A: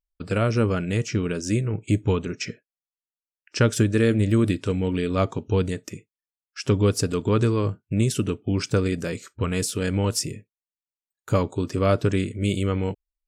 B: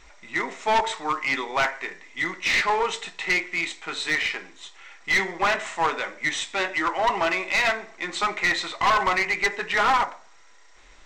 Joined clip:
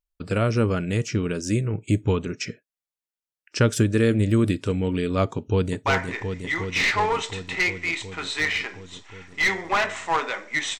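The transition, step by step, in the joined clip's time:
A
0:05.36–0:05.86: delay throw 360 ms, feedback 80%, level −6 dB
0:05.86: continue with B from 0:01.56

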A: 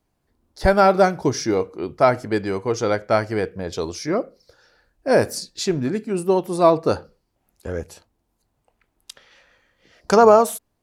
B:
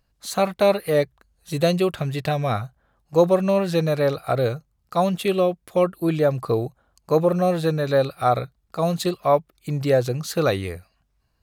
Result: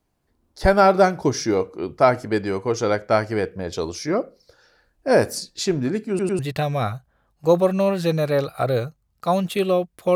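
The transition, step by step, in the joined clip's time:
A
0:06.09: stutter in place 0.10 s, 3 plays
0:06.39: continue with B from 0:02.08

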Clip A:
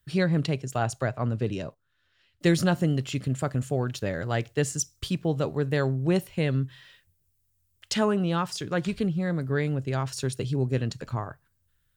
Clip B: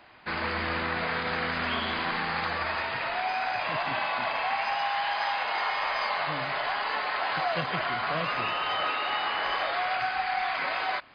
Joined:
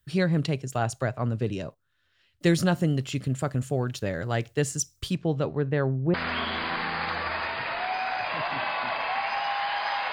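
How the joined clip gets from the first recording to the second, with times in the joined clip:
clip A
0:05.15–0:06.14: low-pass filter 6,700 Hz → 1,100 Hz
0:06.14: continue with clip B from 0:01.49

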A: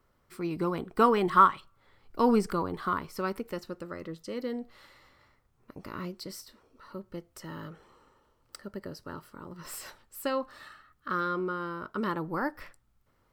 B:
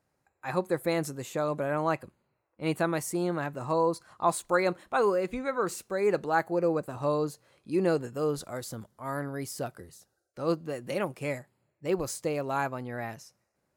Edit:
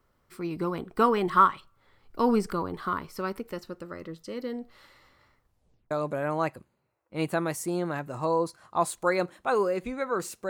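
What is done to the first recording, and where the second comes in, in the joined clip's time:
A
0:05.42: tape stop 0.49 s
0:05.91: continue with B from 0:01.38

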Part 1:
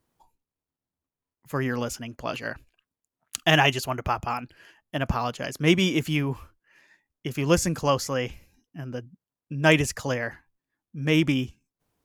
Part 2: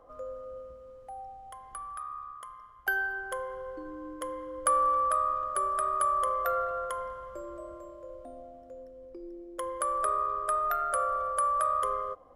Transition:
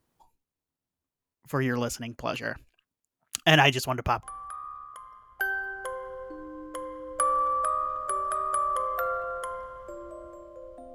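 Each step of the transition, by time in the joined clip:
part 1
0:04.23: continue with part 2 from 0:01.70

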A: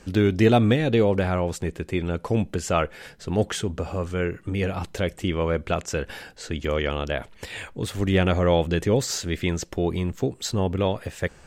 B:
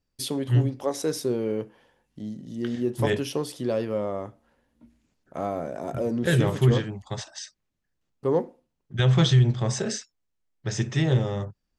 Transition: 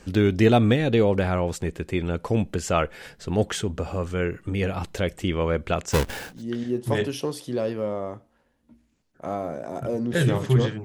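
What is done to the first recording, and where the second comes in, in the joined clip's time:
A
0:05.92–0:06.43: each half-wave held at its own peak
0:06.34: continue with B from 0:02.46, crossfade 0.18 s

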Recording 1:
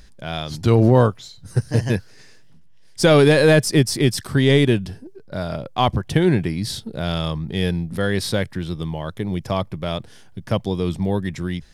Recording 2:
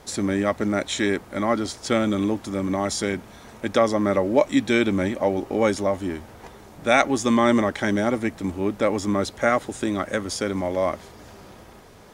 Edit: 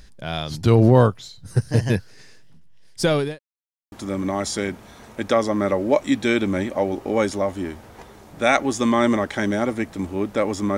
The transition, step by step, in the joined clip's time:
recording 1
0:02.83–0:03.39: fade out linear
0:03.39–0:03.92: silence
0:03.92: continue with recording 2 from 0:02.37

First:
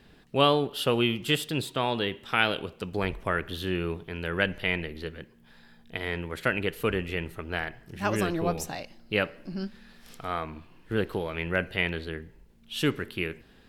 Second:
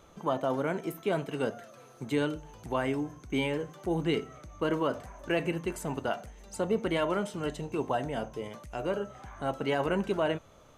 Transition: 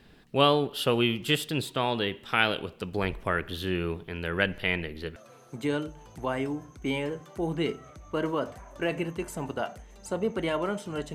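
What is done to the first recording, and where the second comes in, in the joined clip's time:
first
0:05.16: continue with second from 0:01.64

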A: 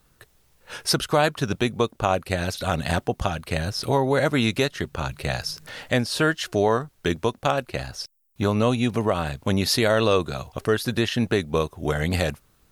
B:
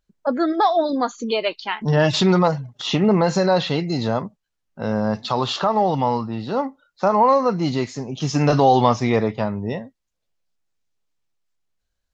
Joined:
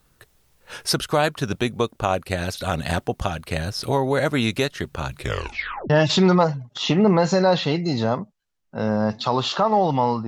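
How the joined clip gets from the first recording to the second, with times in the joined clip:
A
0:05.16: tape stop 0.74 s
0:05.90: continue with B from 0:01.94

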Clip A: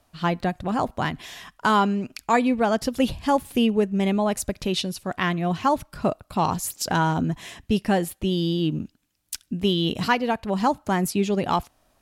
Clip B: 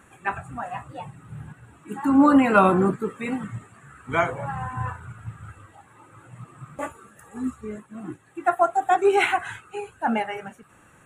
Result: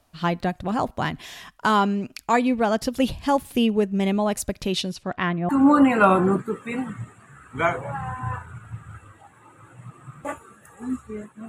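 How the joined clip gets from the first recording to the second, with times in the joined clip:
clip A
0:04.91–0:05.49: low-pass filter 7,500 Hz → 1,300 Hz
0:05.49: continue with clip B from 0:02.03

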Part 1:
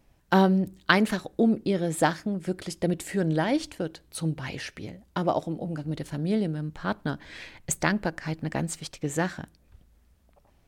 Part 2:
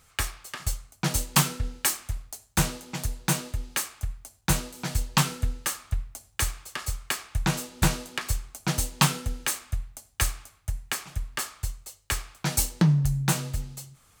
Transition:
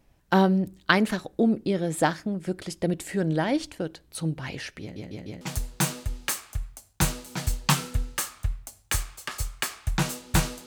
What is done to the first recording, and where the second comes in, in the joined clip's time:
part 1
0:04.81: stutter in place 0.15 s, 4 plays
0:05.41: continue with part 2 from 0:02.89

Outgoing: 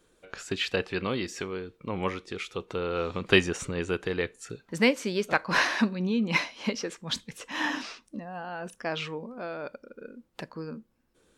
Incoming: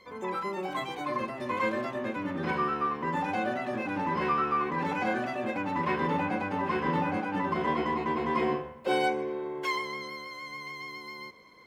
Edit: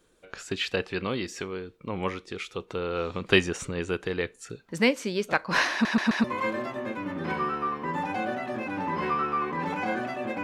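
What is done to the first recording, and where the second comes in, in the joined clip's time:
outgoing
0:05.72: stutter in place 0.13 s, 4 plays
0:06.24: continue with incoming from 0:01.43

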